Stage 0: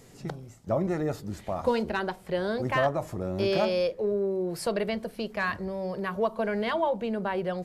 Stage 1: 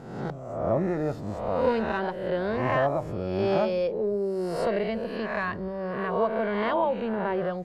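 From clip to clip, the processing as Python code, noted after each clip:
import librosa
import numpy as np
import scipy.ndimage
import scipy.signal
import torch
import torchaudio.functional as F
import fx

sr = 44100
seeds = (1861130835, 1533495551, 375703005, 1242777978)

y = fx.spec_swells(x, sr, rise_s=0.98)
y = fx.lowpass(y, sr, hz=1600.0, slope=6)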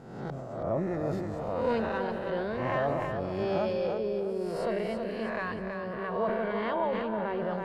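y = fx.echo_feedback(x, sr, ms=325, feedback_pct=38, wet_db=-6.5)
y = fx.sustainer(y, sr, db_per_s=30.0)
y = y * librosa.db_to_amplitude(-5.5)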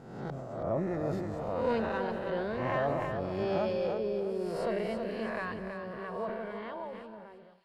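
y = fx.fade_out_tail(x, sr, length_s=2.5)
y = fx.echo_wet_highpass(y, sr, ms=805, feedback_pct=54, hz=3500.0, wet_db=-14.5)
y = y * librosa.db_to_amplitude(-1.5)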